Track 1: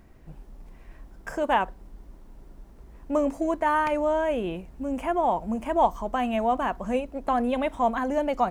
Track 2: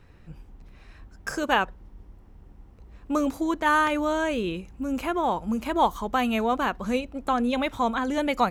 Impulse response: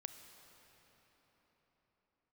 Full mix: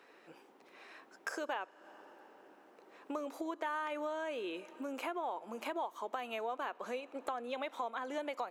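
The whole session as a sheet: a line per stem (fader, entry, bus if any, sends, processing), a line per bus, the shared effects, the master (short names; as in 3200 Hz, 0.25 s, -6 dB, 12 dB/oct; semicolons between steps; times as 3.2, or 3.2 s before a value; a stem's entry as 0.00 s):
-13.0 dB, 0.00 s, no send, dry
-0.5 dB, 0.00 s, send -8 dB, compressor, threshold -27 dBFS, peak gain reduction 11 dB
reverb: on, pre-delay 29 ms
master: HPF 360 Hz 24 dB/oct; high shelf 5300 Hz -4.5 dB; compressor 2.5:1, threshold -41 dBFS, peak gain reduction 13.5 dB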